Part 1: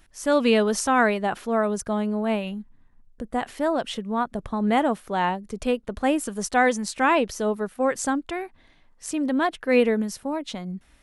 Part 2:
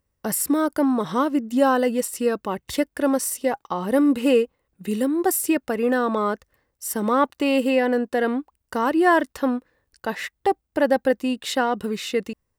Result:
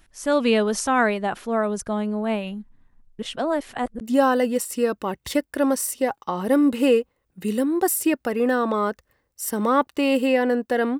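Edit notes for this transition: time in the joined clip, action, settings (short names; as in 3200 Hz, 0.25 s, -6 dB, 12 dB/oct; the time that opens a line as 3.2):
part 1
3.19–4.01 reverse
4.01 switch to part 2 from 1.44 s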